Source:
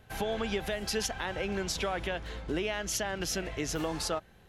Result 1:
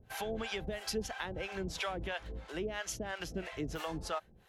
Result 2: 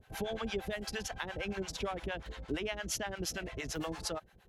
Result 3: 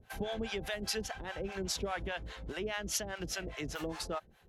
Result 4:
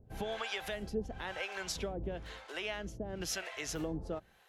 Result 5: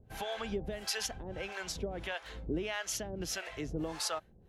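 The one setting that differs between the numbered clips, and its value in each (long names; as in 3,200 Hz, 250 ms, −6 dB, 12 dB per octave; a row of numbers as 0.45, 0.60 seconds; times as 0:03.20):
two-band tremolo in antiphase, speed: 3, 8.7, 4.9, 1, 1.6 Hertz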